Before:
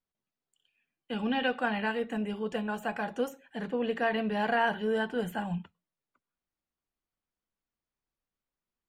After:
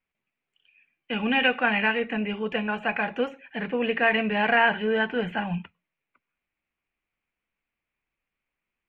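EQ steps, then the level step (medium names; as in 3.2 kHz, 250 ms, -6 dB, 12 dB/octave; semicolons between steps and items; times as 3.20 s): resonant low-pass 2.4 kHz, resonance Q 4.7; +4.0 dB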